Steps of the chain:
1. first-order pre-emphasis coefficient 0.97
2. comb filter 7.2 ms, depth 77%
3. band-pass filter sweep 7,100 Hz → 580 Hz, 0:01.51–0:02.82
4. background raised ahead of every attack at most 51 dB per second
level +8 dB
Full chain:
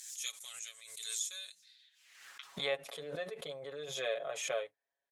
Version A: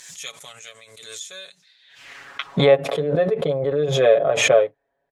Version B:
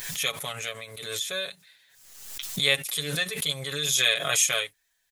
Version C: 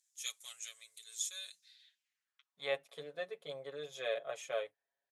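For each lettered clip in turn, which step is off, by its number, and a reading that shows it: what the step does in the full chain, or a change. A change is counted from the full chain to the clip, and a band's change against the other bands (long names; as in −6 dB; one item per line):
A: 1, 8 kHz band −13.0 dB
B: 3, 500 Hz band −10.5 dB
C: 4, change in momentary loudness spread −3 LU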